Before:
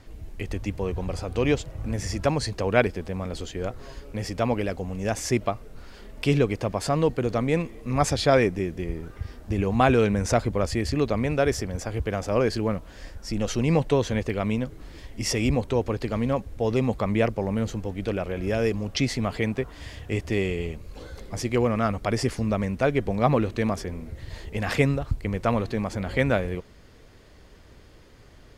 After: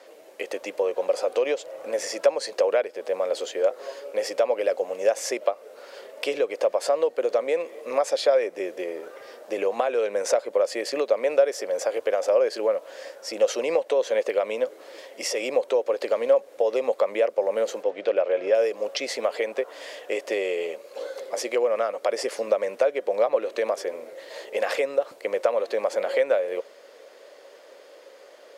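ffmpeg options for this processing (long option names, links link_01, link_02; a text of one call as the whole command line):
ffmpeg -i in.wav -filter_complex "[0:a]asettb=1/sr,asplit=3[link_01][link_02][link_03];[link_01]atrim=end=17.834[link_04];[link_02]atrim=start=17.83:end=18.55,asetpts=PTS-STARTPTS,afade=type=in:duration=0.004:curve=qsin,afade=type=out:start_time=0.716:duration=0.004:curve=qsin,lowpass=4300[link_05];[link_03]atrim=start=18.546[link_06];[link_04][link_05]acrossfade=duration=0.004:curve1=hsin:curve2=qsin[link_07];[link_07][link_06]acrossfade=duration=0.004:curve1=qsin:curve2=hsin,highpass=frequency=410:width=0.5412,highpass=frequency=410:width=1.3066,acompressor=threshold=-30dB:ratio=6,equalizer=frequency=550:width_type=o:width=0.45:gain=13.5,volume=3.5dB" out.wav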